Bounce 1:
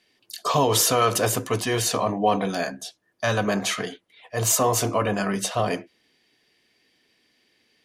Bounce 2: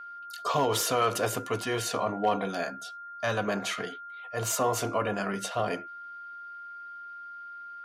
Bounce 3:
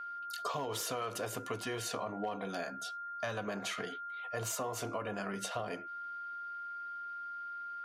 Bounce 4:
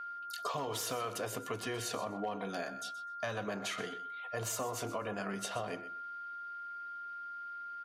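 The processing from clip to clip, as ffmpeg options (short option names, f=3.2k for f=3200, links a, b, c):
-af "aeval=exprs='0.282*(abs(mod(val(0)/0.282+3,4)-2)-1)':c=same,aeval=exprs='val(0)+0.0178*sin(2*PI*1400*n/s)':c=same,bass=f=250:g=-4,treble=f=4k:g=-5,volume=-5dB"
-af "acompressor=threshold=-35dB:ratio=6"
-af "aecho=1:1:126|252:0.2|0.0319"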